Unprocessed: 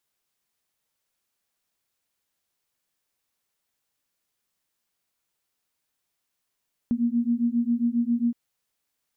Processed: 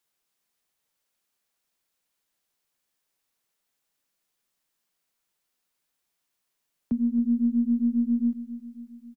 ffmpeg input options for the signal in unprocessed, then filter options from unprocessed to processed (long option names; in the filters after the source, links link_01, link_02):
-f lavfi -i "aevalsrc='0.0631*(sin(2*PI*233*t)+sin(2*PI*240.4*t))':duration=1.42:sample_rate=44100"
-filter_complex "[0:a]acrossover=split=120|140|240[link_01][link_02][link_03][link_04];[link_01]aeval=exprs='max(val(0),0)':channel_layout=same[link_05];[link_05][link_02][link_03][link_04]amix=inputs=4:normalize=0,aecho=1:1:271|542|813|1084|1355|1626:0.2|0.114|0.0648|0.037|0.0211|0.012"